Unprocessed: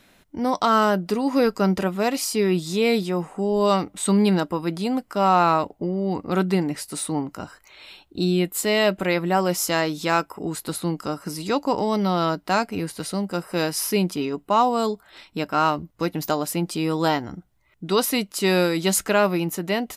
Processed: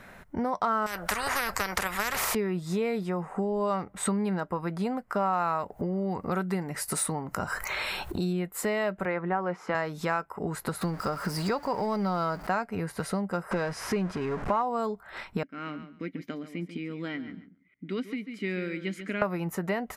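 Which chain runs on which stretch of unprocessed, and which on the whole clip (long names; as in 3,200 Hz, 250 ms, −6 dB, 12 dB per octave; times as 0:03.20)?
0:00.86–0:02.35: transient designer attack +9 dB, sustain +2 dB + every bin compressed towards the loudest bin 10 to 1
0:05.33–0:08.33: high-shelf EQ 4,700 Hz +10.5 dB + upward compression, threshold −24 dBFS
0:09.05–0:09.75: band-pass filter 190–2,200 Hz + notch filter 610 Hz, Q 6.4
0:10.81–0:12.47: converter with a step at zero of −32.5 dBFS + parametric band 4,700 Hz +12 dB 0.21 octaves
0:13.51–0:14.62: converter with a step at zero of −26.5 dBFS + high-frequency loss of the air 74 metres
0:15.43–0:19.22: formant filter i + parametric band 890 Hz +8.5 dB 0.3 octaves + repeating echo 140 ms, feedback 18%, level −12 dB
whole clip: high shelf with overshoot 2,400 Hz −9.5 dB, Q 1.5; downward compressor 6 to 1, threshold −34 dBFS; parametric band 300 Hz −10.5 dB 0.41 octaves; level +8.5 dB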